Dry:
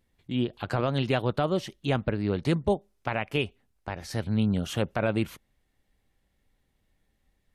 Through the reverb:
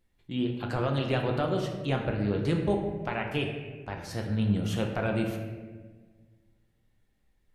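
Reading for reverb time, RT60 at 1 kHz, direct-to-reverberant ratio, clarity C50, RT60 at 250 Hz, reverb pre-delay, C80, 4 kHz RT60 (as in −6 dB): 1.4 s, 1.2 s, 1.5 dB, 4.5 dB, 1.9 s, 6 ms, 6.5 dB, 0.85 s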